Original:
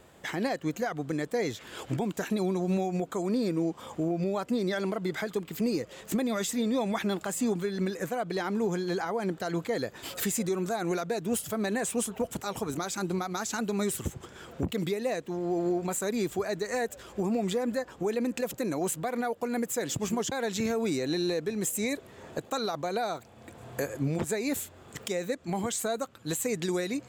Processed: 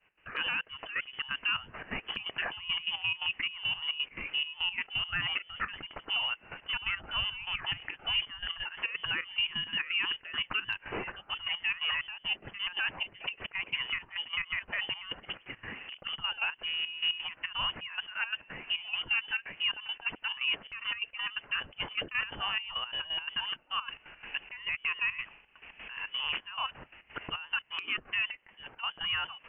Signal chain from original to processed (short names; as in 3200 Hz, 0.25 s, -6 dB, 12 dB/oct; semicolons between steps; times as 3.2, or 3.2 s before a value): expander -46 dBFS; HPF 310 Hz 12 dB/oct; tilt shelf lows -5.5 dB, about 730 Hz; limiter -25 dBFS, peak gain reduction 10.5 dB; step gate "x.x.xxx..x." 188 bpm -12 dB; inverted band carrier 3500 Hz; speed mistake 48 kHz file played as 44.1 kHz; gain +4 dB; AAC 192 kbps 48000 Hz